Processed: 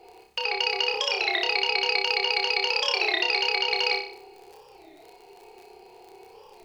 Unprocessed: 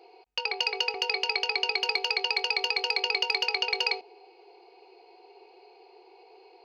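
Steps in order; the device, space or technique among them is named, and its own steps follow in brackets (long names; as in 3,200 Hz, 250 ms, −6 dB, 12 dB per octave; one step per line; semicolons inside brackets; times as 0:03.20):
high-shelf EQ 8,300 Hz −11 dB
warped LP (wow of a warped record 33 1/3 rpm, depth 250 cents; surface crackle 21 per second −40 dBFS; pink noise bed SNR 39 dB)
flutter between parallel walls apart 5.2 metres, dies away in 0.5 s
level +2 dB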